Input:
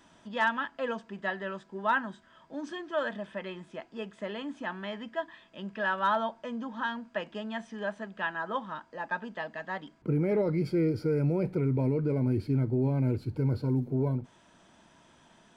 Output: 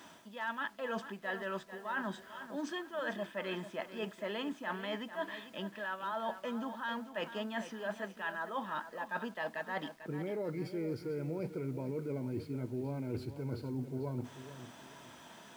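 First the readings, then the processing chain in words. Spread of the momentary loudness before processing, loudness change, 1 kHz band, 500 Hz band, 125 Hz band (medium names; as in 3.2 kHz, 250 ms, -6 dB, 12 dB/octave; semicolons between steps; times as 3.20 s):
12 LU, -8.0 dB, -7.0 dB, -6.5 dB, -12.0 dB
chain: high-pass 52 Hz 24 dB/octave; bass shelf 170 Hz -10 dB; hum notches 50/100 Hz; reverse; compression 20:1, threshold -41 dBFS, peak gain reduction 19.5 dB; reverse; word length cut 12-bit, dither none; bit-crushed delay 444 ms, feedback 35%, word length 11-bit, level -11.5 dB; trim +6.5 dB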